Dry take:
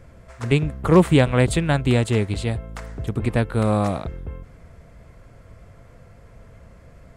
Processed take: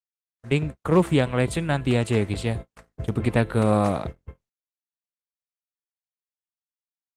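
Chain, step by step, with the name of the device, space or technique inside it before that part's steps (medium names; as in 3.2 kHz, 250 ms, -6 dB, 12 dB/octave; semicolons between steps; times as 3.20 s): de-hum 336.8 Hz, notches 35; gate -37 dBFS, range -27 dB; video call (high-pass 100 Hz 6 dB/octave; level rider gain up to 11 dB; gate -24 dBFS, range -59 dB; trim -6 dB; Opus 20 kbps 48 kHz)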